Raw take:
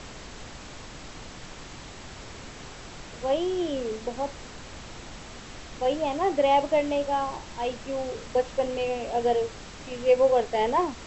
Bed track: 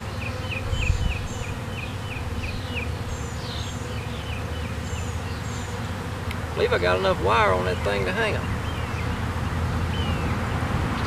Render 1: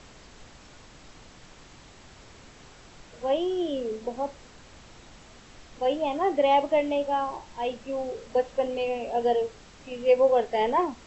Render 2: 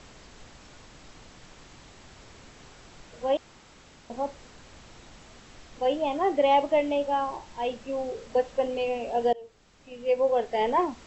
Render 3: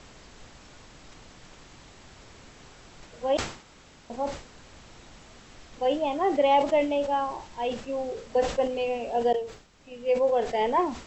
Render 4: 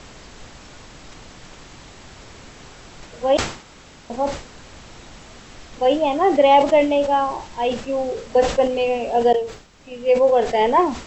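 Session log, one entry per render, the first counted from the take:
noise reduction from a noise print 8 dB
0:03.37–0:04.10: fill with room tone; 0:09.33–0:10.76: fade in, from −20.5 dB
level that may fall only so fast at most 110 dB per second
level +8 dB

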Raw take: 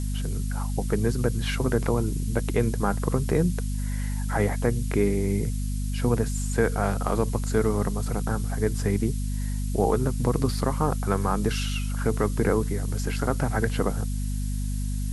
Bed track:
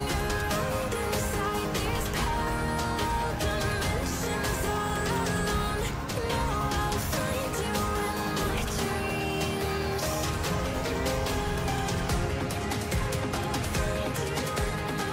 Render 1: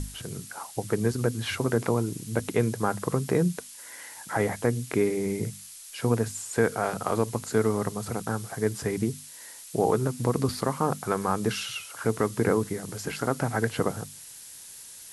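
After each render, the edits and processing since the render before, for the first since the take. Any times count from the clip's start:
mains-hum notches 50/100/150/200/250 Hz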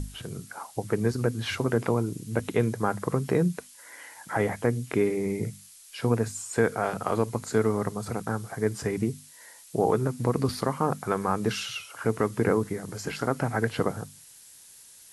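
noise reduction from a noise print 6 dB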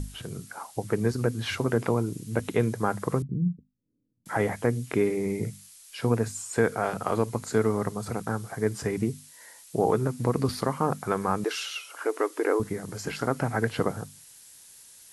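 0:03.22–0:04.26: inverse Chebyshev low-pass filter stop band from 760 Hz, stop band 60 dB
0:11.44–0:12.60: linear-phase brick-wall high-pass 270 Hz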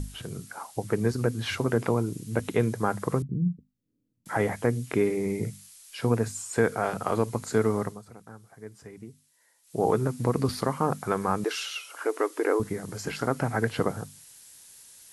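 0:07.79–0:09.86: duck −16.5 dB, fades 0.24 s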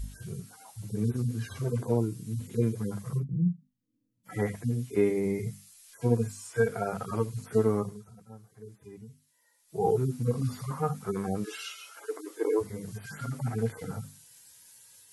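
harmonic-percussive split with one part muted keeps harmonic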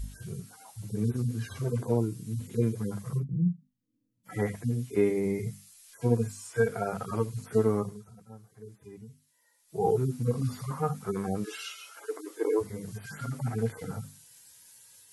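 no processing that can be heard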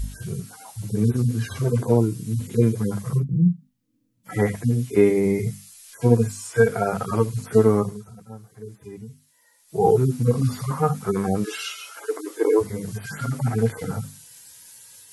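level +8.5 dB

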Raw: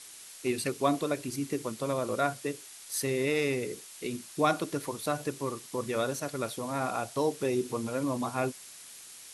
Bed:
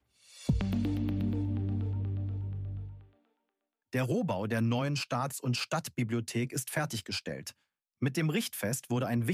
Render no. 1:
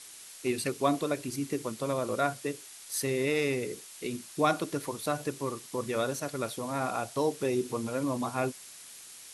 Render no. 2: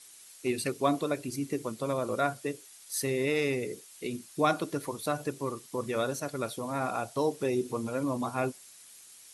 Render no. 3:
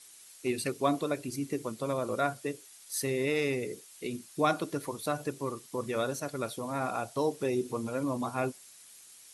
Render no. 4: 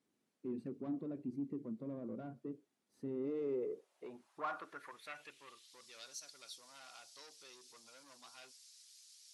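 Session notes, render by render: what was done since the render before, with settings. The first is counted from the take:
no processing that can be heard
broadband denoise 7 dB, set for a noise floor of −49 dBFS
level −1 dB
soft clipping −30 dBFS, distortion −9 dB; band-pass filter sweep 230 Hz → 4,900 Hz, 0:03.03–0:05.89

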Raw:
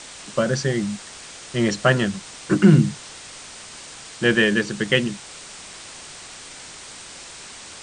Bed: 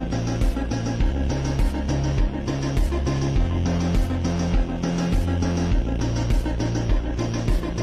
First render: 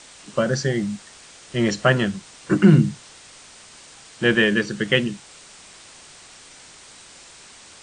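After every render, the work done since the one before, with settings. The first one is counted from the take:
noise reduction from a noise print 6 dB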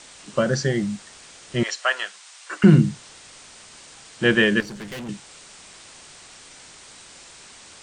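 0:01.63–0:02.64: Bessel high-pass filter 1,000 Hz, order 4
0:04.60–0:05.09: tube saturation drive 32 dB, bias 0.6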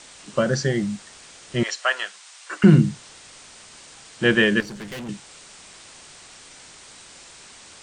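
no processing that can be heard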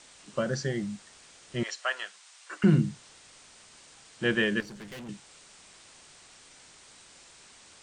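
level −8.5 dB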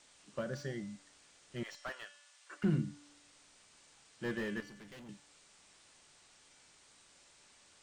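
tuned comb filter 290 Hz, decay 0.97 s, mix 70%
slew-rate limiting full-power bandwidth 17 Hz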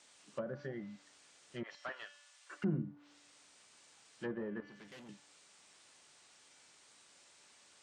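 treble cut that deepens with the level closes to 850 Hz, closed at −34 dBFS
high-pass filter 210 Hz 6 dB per octave

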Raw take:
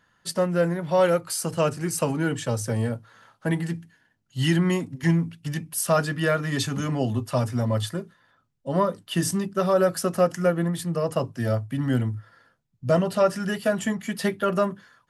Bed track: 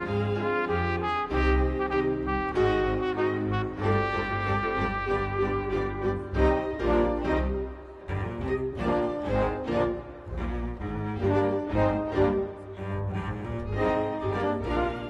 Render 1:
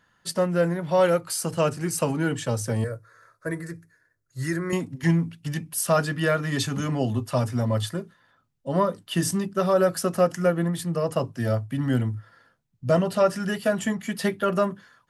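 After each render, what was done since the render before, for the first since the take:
0:02.84–0:04.73: phaser with its sweep stopped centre 820 Hz, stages 6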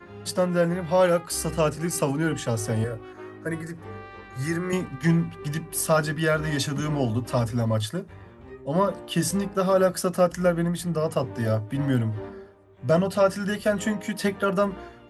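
mix in bed track −14.5 dB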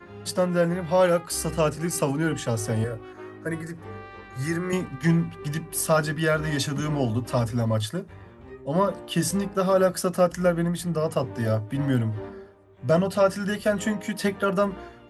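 no processing that can be heard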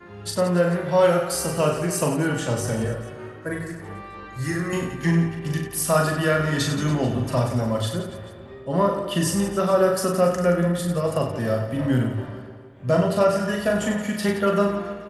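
reverse bouncing-ball delay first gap 40 ms, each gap 1.4×, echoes 5
spring reverb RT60 2.5 s, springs 53 ms, chirp 45 ms, DRR 12 dB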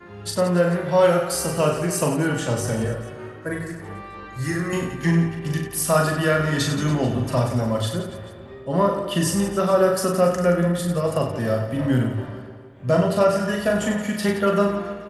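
level +1 dB

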